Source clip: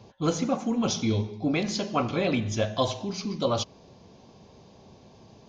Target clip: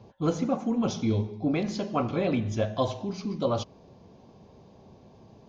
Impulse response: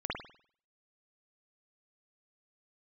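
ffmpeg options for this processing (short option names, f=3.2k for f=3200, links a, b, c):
-af "highshelf=f=2k:g=-10"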